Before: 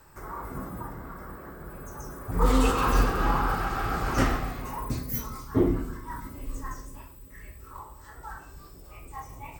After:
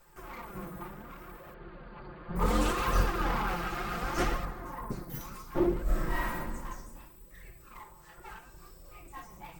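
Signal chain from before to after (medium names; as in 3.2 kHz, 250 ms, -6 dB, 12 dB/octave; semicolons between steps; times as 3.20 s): comb filter that takes the minimum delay 5.7 ms; 1.54–2.36 s: brick-wall FIR low-pass 4.8 kHz; 8.55–9.02 s: flutter echo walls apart 5.7 m, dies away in 0.3 s; flange 0.68 Hz, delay 1.5 ms, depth 4.9 ms, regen +46%; 4.45–5.21 s: resonant high shelf 2 kHz -7 dB, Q 1.5; 5.83–6.37 s: reverb throw, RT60 1.3 s, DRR -11 dB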